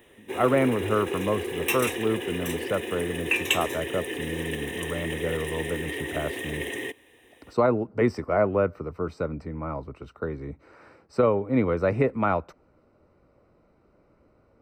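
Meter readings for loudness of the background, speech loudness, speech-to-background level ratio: -30.5 LUFS, -28.0 LUFS, 2.5 dB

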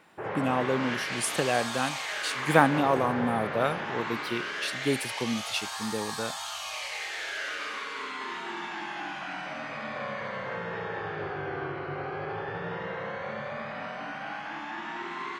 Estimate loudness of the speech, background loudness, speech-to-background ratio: -29.5 LUFS, -34.0 LUFS, 4.5 dB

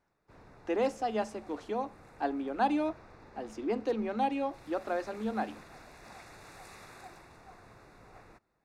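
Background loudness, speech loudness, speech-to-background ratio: -54.0 LUFS, -34.0 LUFS, 20.0 dB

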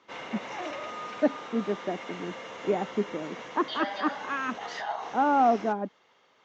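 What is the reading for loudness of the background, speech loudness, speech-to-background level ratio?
-38.5 LUFS, -30.0 LUFS, 8.5 dB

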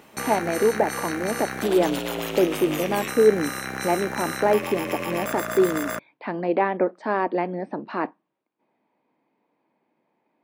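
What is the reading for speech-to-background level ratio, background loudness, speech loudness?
5.0 dB, -29.5 LUFS, -24.5 LUFS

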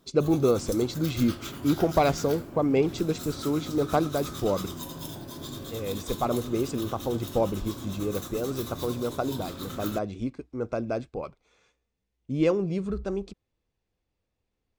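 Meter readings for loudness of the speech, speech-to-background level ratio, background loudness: -28.5 LUFS, 10.0 dB, -38.5 LUFS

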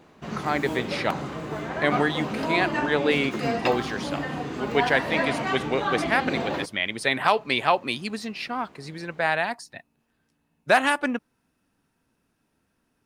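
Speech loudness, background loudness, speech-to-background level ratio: -26.0 LUFS, -29.0 LUFS, 3.0 dB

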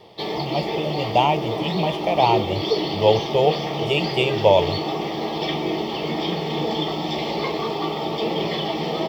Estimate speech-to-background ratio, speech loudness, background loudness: 3.0 dB, -22.0 LUFS, -25.0 LUFS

